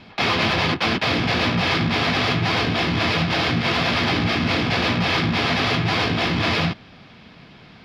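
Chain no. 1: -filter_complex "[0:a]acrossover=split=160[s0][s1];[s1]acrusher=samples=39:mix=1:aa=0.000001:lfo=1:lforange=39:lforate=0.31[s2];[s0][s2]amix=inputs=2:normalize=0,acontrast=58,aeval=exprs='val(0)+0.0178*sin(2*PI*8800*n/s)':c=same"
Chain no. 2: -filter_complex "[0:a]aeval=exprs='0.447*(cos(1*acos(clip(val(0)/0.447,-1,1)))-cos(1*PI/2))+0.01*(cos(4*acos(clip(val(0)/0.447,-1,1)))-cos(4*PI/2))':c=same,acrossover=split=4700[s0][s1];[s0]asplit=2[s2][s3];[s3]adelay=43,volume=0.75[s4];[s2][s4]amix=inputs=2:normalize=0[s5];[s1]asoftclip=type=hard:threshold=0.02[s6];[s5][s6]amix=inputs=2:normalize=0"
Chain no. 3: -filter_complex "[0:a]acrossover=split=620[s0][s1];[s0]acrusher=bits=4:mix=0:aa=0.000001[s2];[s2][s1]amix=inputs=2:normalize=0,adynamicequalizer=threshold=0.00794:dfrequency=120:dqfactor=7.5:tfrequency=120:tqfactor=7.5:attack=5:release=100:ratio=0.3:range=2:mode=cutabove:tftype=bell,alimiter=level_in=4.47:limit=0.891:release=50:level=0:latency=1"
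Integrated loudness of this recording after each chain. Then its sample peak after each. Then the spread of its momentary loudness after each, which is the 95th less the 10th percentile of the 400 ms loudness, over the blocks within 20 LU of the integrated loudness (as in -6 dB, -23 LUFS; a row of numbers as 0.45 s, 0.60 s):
-16.0 LUFS, -18.5 LUFS, -9.5 LUFS; -4.5 dBFS, -6.0 dBFS, -1.0 dBFS; 10 LU, 1 LU, 1 LU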